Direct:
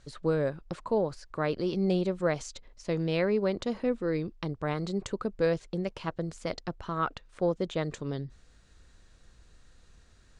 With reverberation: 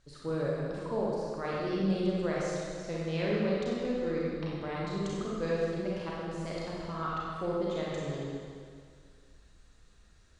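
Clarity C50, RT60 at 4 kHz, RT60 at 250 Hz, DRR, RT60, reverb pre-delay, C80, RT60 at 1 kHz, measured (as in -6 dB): -3.5 dB, 2.0 s, 2.1 s, -6.0 dB, 2.1 s, 33 ms, -1.0 dB, 2.1 s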